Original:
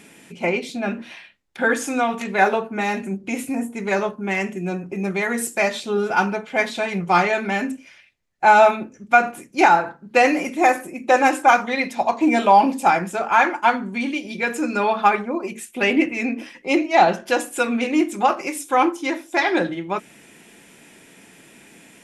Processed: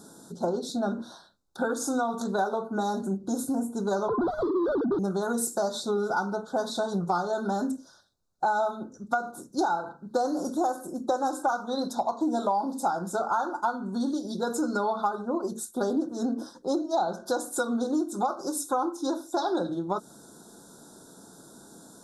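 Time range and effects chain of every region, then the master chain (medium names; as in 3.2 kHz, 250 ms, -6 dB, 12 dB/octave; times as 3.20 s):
4.08–4.99 s: formants replaced by sine waves + overdrive pedal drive 33 dB, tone 2.6 kHz, clips at -12.5 dBFS + distance through air 490 m
whole clip: Chebyshev band-stop 1.5–3.7 kHz, order 4; compression 6:1, threshold -24 dBFS; dynamic bell 1.7 kHz, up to -5 dB, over -48 dBFS, Q 4.5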